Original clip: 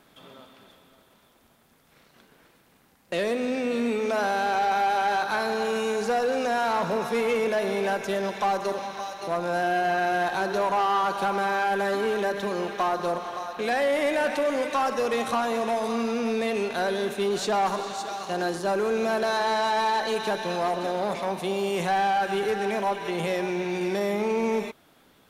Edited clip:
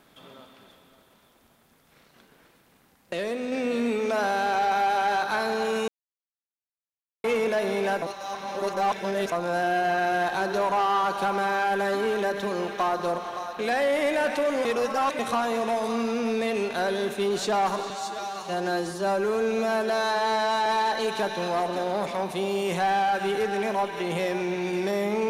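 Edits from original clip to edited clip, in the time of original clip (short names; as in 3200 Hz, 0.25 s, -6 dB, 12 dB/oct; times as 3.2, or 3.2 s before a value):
3.13–3.52 gain -3.5 dB
5.88–7.24 mute
8.02–9.32 reverse
14.65–15.19 reverse
17.9–19.74 stretch 1.5×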